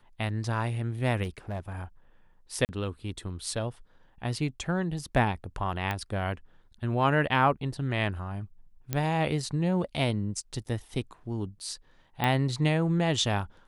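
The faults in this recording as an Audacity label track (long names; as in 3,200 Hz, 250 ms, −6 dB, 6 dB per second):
1.230000	1.730000	clipping −28.5 dBFS
2.650000	2.690000	drop-out 39 ms
5.910000	5.910000	click −17 dBFS
8.930000	8.930000	click −14 dBFS
12.240000	12.240000	click −13 dBFS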